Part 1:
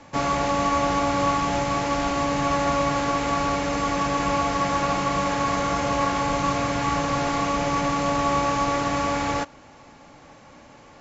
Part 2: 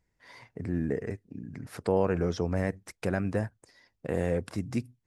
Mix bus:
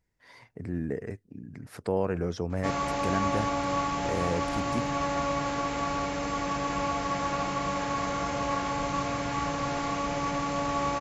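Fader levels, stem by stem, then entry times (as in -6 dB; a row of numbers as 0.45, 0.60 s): -6.5, -2.0 dB; 2.50, 0.00 s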